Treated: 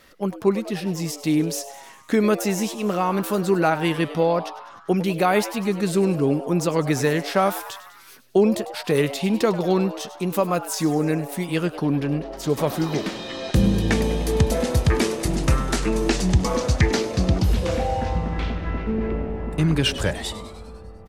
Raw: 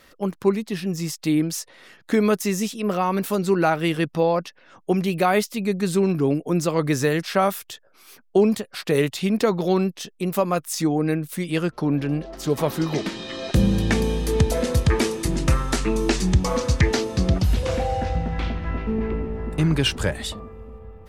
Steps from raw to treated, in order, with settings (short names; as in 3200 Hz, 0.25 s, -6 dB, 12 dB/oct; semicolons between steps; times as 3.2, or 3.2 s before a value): frequency-shifting echo 0.1 s, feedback 62%, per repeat +130 Hz, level -15 dB